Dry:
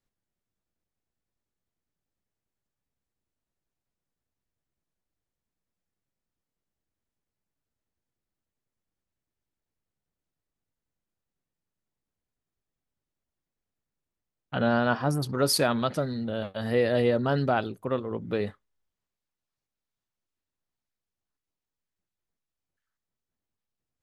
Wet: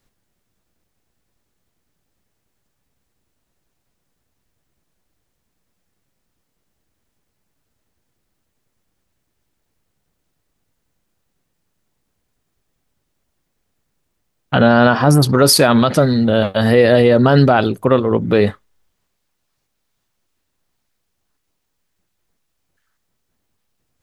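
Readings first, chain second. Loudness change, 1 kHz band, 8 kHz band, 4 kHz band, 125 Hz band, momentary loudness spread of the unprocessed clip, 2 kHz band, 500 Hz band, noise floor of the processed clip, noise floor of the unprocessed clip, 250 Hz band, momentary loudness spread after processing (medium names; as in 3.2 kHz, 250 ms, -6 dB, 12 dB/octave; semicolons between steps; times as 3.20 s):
+14.0 dB, +13.0 dB, +14.0 dB, +13.5 dB, +15.5 dB, 8 LU, +13.0 dB, +13.5 dB, -72 dBFS, under -85 dBFS, +15.0 dB, 5 LU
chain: loudness maximiser +18 dB; trim -1 dB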